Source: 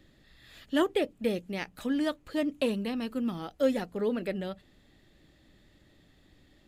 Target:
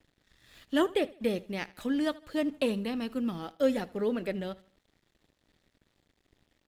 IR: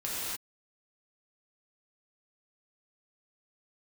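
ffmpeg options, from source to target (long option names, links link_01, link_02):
-af "aeval=exprs='sgn(val(0))*max(abs(val(0))-0.00112,0)':channel_layout=same,aecho=1:1:78|156|234:0.0891|0.033|0.0122"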